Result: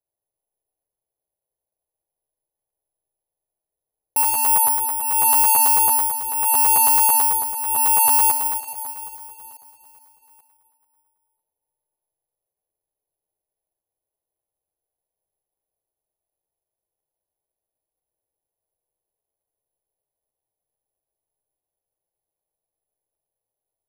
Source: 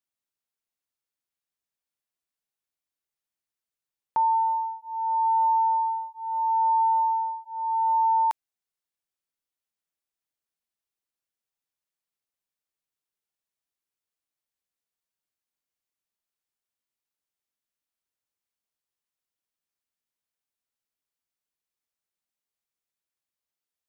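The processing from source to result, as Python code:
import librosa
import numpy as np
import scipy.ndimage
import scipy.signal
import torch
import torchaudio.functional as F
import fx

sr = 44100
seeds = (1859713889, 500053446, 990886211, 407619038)

p1 = scipy.signal.sosfilt(scipy.signal.butter(4, 1000.0, 'lowpass', fs=sr, output='sos'), x)
p2 = fx.rider(p1, sr, range_db=10, speed_s=2.0)
p3 = p1 + F.gain(torch.from_numpy(p2), 3.0).numpy()
p4 = fx.fixed_phaser(p3, sr, hz=560.0, stages=4)
p5 = 10.0 ** (-24.5 / 20.0) * np.tanh(p4 / 10.0 ** (-24.5 / 20.0))
p6 = p5 + fx.echo_feedback(p5, sr, ms=419, feedback_pct=50, wet_db=-13.5, dry=0)
p7 = fx.rev_freeverb(p6, sr, rt60_s=2.5, hf_ratio=0.6, predelay_ms=15, drr_db=1.0)
p8 = (np.kron(p7[::4], np.eye(4)[0]) * 4)[:len(p7)]
p9 = fx.buffer_crackle(p8, sr, first_s=0.7, period_s=0.11, block=512, kind='repeat')
y = F.gain(torch.from_numpy(p9), 3.0).numpy()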